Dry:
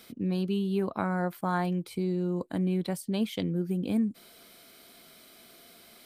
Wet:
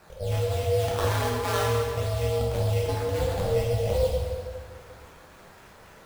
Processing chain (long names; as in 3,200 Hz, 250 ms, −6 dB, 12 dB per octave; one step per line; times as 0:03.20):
sample-and-hold swept by an LFO 13×, swing 60% 3.7 Hz
ring modulation 290 Hz
dense smooth reverb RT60 2 s, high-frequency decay 0.8×, DRR −5 dB
level +1 dB